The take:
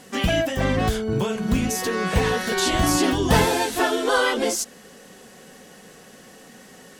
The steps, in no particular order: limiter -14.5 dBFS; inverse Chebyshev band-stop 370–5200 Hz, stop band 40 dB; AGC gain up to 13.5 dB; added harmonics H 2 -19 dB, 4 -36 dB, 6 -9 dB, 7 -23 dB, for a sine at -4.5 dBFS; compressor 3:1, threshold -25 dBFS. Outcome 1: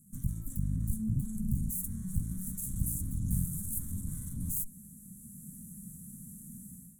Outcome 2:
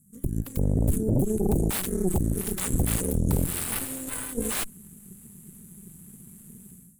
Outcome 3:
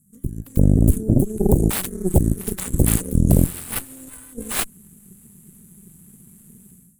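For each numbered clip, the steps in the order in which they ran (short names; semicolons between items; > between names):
added harmonics > compressor > AGC > limiter > inverse Chebyshev band-stop; inverse Chebyshev band-stop > compressor > AGC > added harmonics > limiter; compressor > limiter > inverse Chebyshev band-stop > AGC > added harmonics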